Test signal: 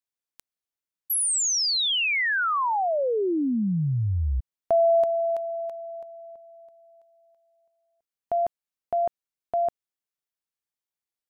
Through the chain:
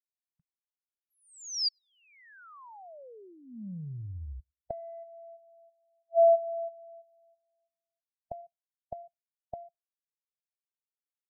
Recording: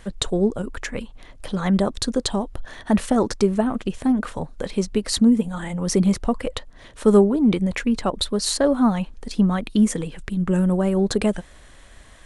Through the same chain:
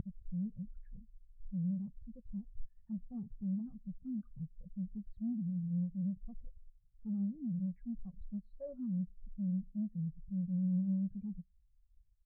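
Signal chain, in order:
low-pass filter 2,000 Hz 12 dB per octave
low shelf with overshoot 220 Hz +8.5 dB, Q 3
in parallel at −0.5 dB: downward compressor, threshold −25 dBFS
on the sum: brickwall limiter −8 dBFS
soft clipping −18 dBFS
gate with flip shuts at −31 dBFS, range −27 dB
on a send: repeating echo 104 ms, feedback 44%, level −19 dB
on the sum: every bin expanded away from the loudest bin 2.5 to 1
level +4.5 dB

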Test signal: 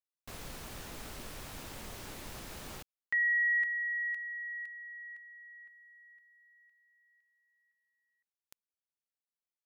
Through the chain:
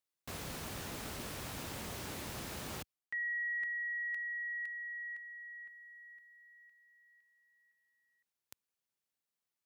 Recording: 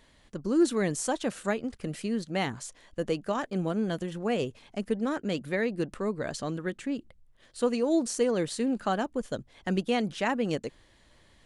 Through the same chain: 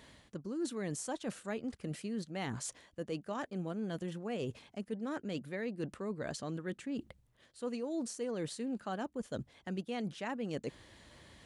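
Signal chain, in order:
high-pass filter 72 Hz
low-shelf EQ 230 Hz +3 dB
reversed playback
downward compressor 4 to 1, threshold −42 dBFS
reversed playback
level +3.5 dB

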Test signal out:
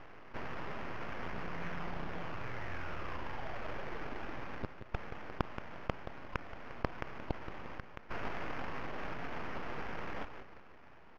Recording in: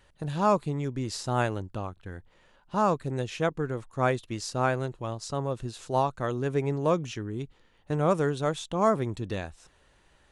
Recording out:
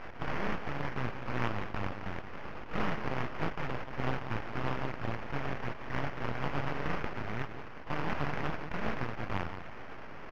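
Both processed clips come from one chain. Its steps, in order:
compressor on every frequency bin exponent 0.6
high-pass filter 120 Hz 12 dB per octave
gate on every frequency bin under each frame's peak −20 dB weak
bass and treble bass +2 dB, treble −5 dB
on a send: repeating echo 176 ms, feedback 27%, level −16.5 dB
on the sum: sample-rate reduction 3,900 Hz, jitter 20%
full-wave rectification
speech leveller 2 s
high-frequency loss of the air 290 metres
envelope flattener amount 50%
level +6.5 dB

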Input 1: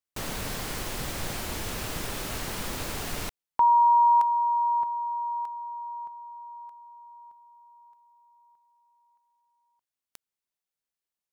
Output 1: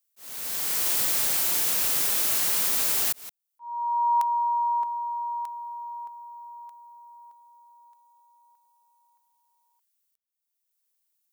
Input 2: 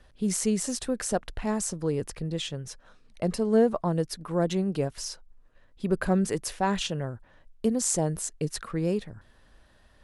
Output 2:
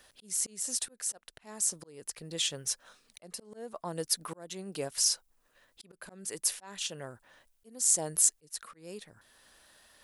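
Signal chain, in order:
volume swells 746 ms
RIAA equalisation recording

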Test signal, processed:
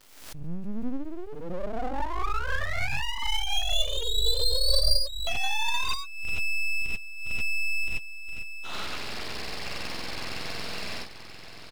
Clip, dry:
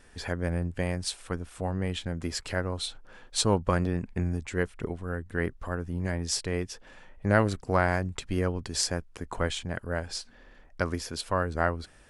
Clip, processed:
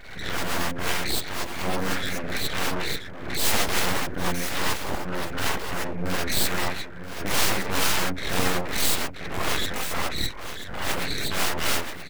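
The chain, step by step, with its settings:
hearing-aid frequency compression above 1,400 Hz 4 to 1
parametric band 200 Hz −5.5 dB 0.62 octaves
surface crackle 220 per second −61 dBFS
wrap-around overflow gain 20 dB
single-tap delay 980 ms −10 dB
reverb whose tail is shaped and stops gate 110 ms rising, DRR −7 dB
full-wave rectification
background raised ahead of every attack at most 63 dB per second

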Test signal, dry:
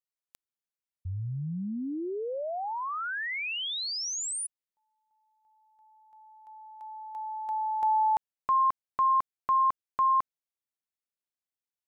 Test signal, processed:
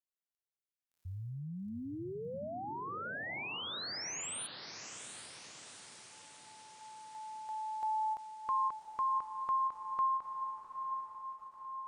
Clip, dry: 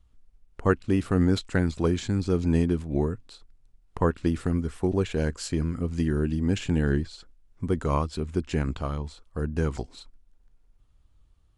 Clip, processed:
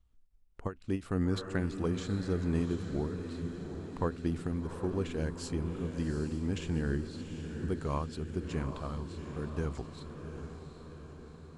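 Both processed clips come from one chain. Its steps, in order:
feedback delay with all-pass diffusion 768 ms, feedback 59%, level −8 dB
every ending faded ahead of time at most 260 dB per second
level −8.5 dB

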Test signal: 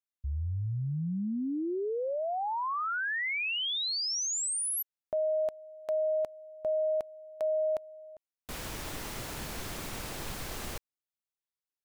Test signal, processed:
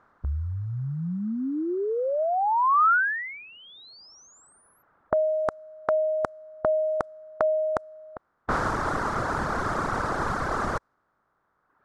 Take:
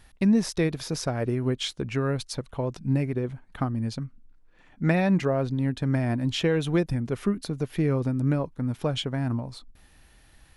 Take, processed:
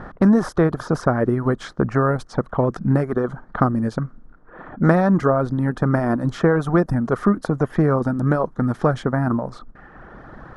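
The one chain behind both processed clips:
compressor on every frequency bin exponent 0.6
high shelf with overshoot 1,900 Hz −12 dB, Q 3
low-pass that shuts in the quiet parts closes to 2,500 Hz, open at −19.5 dBFS
reverb reduction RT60 1.5 s
level +5.5 dB

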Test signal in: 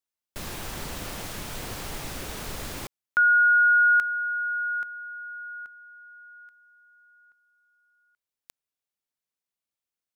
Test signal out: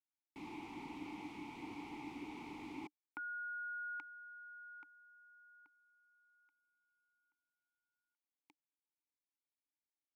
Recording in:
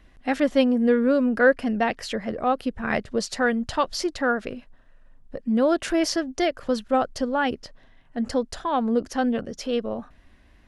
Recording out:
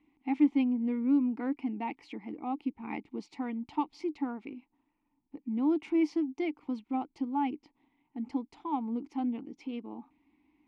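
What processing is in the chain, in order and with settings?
formant filter u
level +2 dB

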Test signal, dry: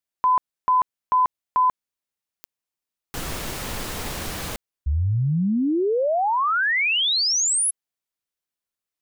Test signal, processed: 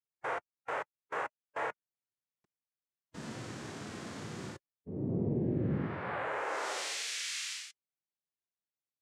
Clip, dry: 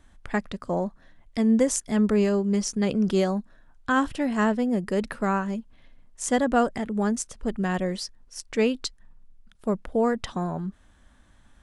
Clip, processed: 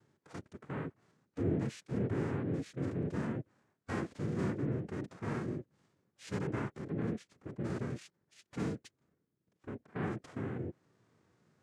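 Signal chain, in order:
dynamic equaliser 500 Hz, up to −7 dB, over −39 dBFS, Q 2.6
cochlear-implant simulation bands 3
spectral tilt −2 dB per octave
downward compressor 1.5 to 1, threshold −29 dBFS
harmonic and percussive parts rebalanced percussive −13 dB
level −6 dB

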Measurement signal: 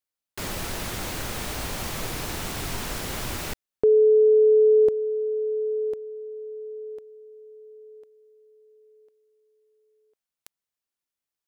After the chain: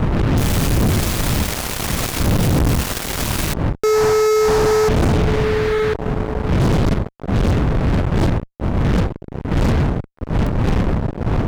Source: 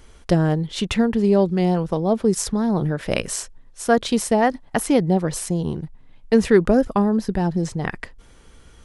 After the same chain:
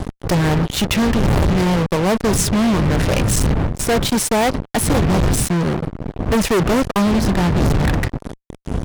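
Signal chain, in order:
wind on the microphone 140 Hz −18 dBFS
fuzz pedal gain 31 dB, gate −29 dBFS

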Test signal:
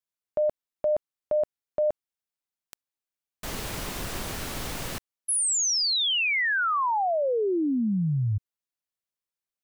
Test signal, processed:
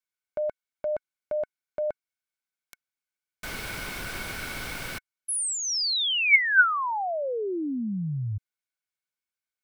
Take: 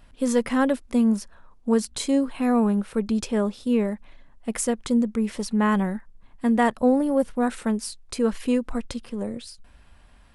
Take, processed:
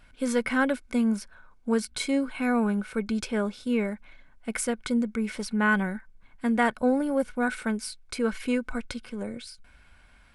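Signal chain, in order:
parametric band 4,300 Hz +3.5 dB 2.9 octaves
hollow resonant body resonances 1,500/2,200 Hz, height 15 dB, ringing for 35 ms
dynamic equaliser 6,800 Hz, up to −5 dB, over −47 dBFS, Q 3.3
level −4.5 dB

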